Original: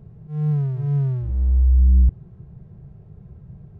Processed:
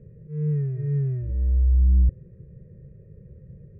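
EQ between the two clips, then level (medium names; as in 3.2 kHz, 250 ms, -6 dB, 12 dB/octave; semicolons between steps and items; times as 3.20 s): cascade formant filter e; Butterworth band-stop 790 Hz, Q 1.4; bass shelf 410 Hz +8.5 dB; +8.5 dB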